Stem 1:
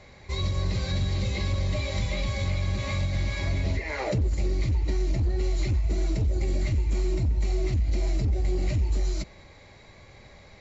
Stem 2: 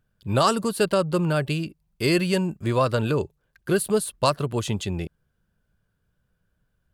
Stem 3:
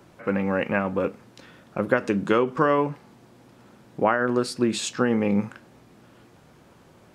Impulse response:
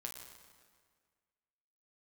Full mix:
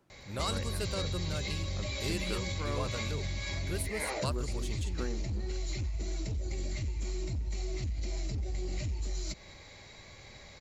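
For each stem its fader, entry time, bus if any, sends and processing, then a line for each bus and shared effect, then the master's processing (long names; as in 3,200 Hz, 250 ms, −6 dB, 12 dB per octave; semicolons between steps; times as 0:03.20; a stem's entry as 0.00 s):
−3.0 dB, 0.10 s, no send, high-shelf EQ 3,100 Hz +11 dB; downward compressor 3 to 1, threshold −31 dBFS, peak gain reduction 8 dB
−17.5 dB, 0.00 s, no send, high-shelf EQ 3,800 Hz +8 dB
−17.5 dB, 0.00 s, no send, tremolo along a rectified sine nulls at 1.8 Hz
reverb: not used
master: no processing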